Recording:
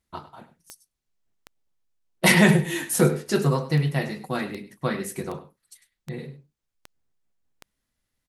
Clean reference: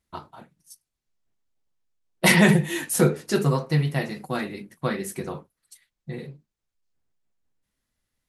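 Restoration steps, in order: de-click; inverse comb 0.1 s -14.5 dB

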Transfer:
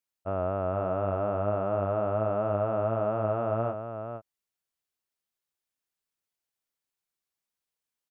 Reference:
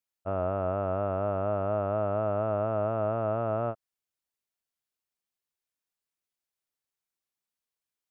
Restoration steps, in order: inverse comb 0.467 s -7.5 dB

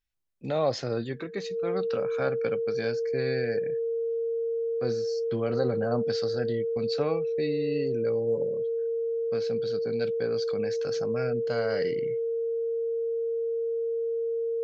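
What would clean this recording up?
notch 460 Hz, Q 30

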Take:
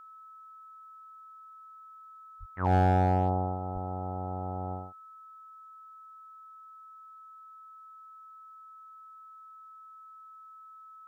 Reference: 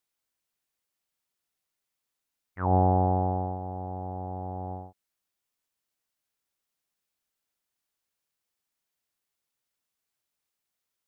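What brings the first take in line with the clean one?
clip repair -18 dBFS; notch 1300 Hz, Q 30; de-plosive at 2.39/3.73

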